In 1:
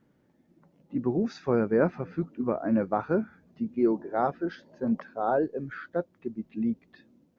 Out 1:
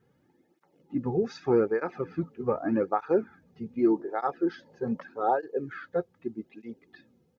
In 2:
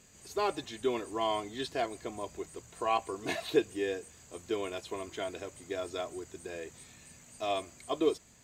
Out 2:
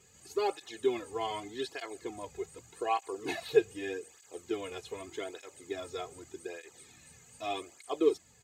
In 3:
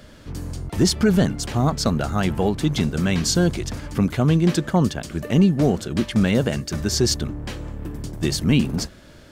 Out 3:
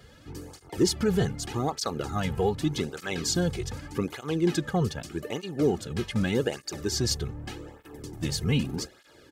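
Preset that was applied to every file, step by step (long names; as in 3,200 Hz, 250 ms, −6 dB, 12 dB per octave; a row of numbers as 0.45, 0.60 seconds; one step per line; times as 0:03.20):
comb filter 2.4 ms, depth 47%
through-zero flanger with one copy inverted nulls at 0.83 Hz, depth 3.6 ms
normalise the peak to −12 dBFS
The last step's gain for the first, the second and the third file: +2.5, 0.0, −4.0 decibels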